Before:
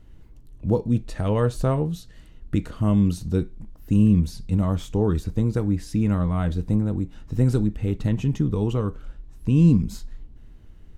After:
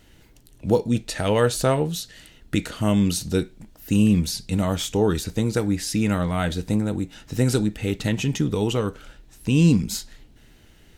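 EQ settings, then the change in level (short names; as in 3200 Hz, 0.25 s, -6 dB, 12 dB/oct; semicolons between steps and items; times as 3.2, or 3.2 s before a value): tilt +3.5 dB/oct; bell 1100 Hz -7.5 dB 0.35 oct; high shelf 7900 Hz -8 dB; +8.0 dB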